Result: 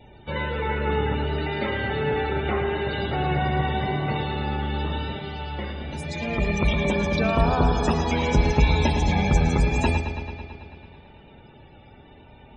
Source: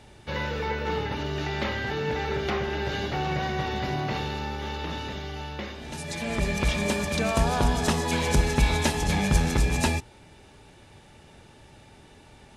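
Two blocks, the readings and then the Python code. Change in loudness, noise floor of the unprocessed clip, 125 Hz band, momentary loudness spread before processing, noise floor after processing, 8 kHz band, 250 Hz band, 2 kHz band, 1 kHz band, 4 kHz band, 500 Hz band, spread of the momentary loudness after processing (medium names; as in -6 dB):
+3.0 dB, -52 dBFS, +4.0 dB, 10 LU, -49 dBFS, -7.5 dB, +3.5 dB, +1.5 dB, +3.5 dB, -0.5 dB, +3.5 dB, 12 LU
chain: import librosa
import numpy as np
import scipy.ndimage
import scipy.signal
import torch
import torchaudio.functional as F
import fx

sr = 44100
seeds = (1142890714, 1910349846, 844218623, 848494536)

y = fx.notch(x, sr, hz=1700.0, q=25.0)
y = fx.vibrato(y, sr, rate_hz=0.83, depth_cents=25.0)
y = fx.spec_topn(y, sr, count=64)
y = fx.echo_bbd(y, sr, ms=110, stages=4096, feedback_pct=74, wet_db=-9.0)
y = F.gain(torch.from_numpy(y), 2.5).numpy()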